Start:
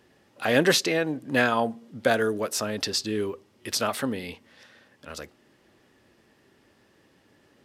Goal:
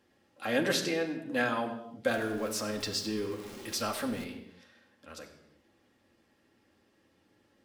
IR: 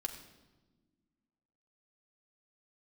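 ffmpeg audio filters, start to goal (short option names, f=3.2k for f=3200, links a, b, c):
-filter_complex "[0:a]asettb=1/sr,asplit=3[a][b][c];[a]atrim=end=2.064[d];[b]atrim=start=2.06:end=4.24,asetpts=PTS-STARTPTS,afade=t=in:d=0.004:c=qsin,afade=t=out:st=2.176:d=0.004:c=qsin,aeval=exprs='val(0)+0.5*0.0211*sgn(val(0))':c=same[e];[c]atrim=start=4.236[f];[d][e]acrossfade=d=0.004:c1=hsin:c2=qsin[g];[g][f]acrossfade=d=0.004:c1=qsin:c2=hsin[h];[1:a]atrim=start_sample=2205,afade=t=out:st=0.42:d=0.01,atrim=end_sample=18963[i];[h][i]afir=irnorm=-1:irlink=0,volume=-7.5dB"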